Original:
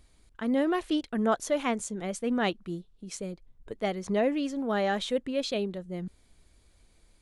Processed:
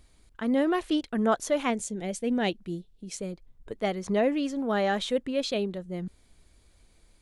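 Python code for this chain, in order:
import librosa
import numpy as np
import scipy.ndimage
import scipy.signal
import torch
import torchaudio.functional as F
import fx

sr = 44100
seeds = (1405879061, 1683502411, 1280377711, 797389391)

y = fx.peak_eq(x, sr, hz=1200.0, db=-12.0, octaves=0.6, at=(1.7, 3.18))
y = y * librosa.db_to_amplitude(1.5)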